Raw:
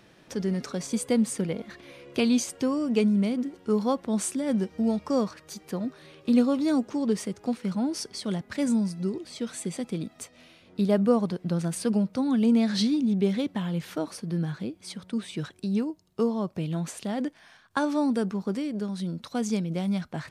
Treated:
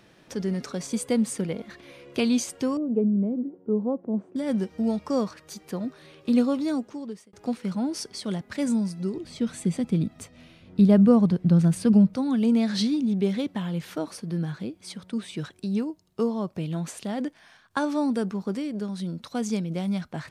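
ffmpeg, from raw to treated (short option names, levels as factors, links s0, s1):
-filter_complex "[0:a]asettb=1/sr,asplit=3[s0][s1][s2];[s0]atrim=end=2.774[s3];[s1]atrim=start=2.77:end=4.36,asetpts=PTS-STARTPTS,afade=t=in:d=0.004:c=qsin,afade=t=out:st=1.586:d=0.004:c=qsin,asuperpass=centerf=290:order=4:qfactor=0.63[s4];[s2]atrim=start=4.356[s5];[s3][s4]acrossfade=d=0.004:c1=hsin:c2=qsin[s6];[s6][s5]acrossfade=d=0.004:c1=qsin:c2=hsin,asettb=1/sr,asplit=3[s7][s8][s9];[s7]atrim=end=9.174[s10];[s8]atrim=start=9.17:end=12.14,asetpts=PTS-STARTPTS,afade=t=in:d=0.004:c=qsin,afade=t=out:st=2.966:d=0.004:c=qsin,bass=f=250:g=12,treble=f=4000:g=-3[s11];[s9]atrim=start=12.136[s12];[s10][s11]acrossfade=d=0.004:c1=hsin:c2=qsin[s13];[s13][s12]acrossfade=d=0.004:c1=qsin:c2=hsin,asplit=2[s14][s15];[s14]atrim=end=7.33,asetpts=PTS-STARTPTS,afade=t=out:st=6.51:d=0.82[s16];[s15]atrim=start=7.33,asetpts=PTS-STARTPTS,afade=t=in:d=0.004:c=hsin[s17];[s16][s17]concat=n=2:v=0:a=1"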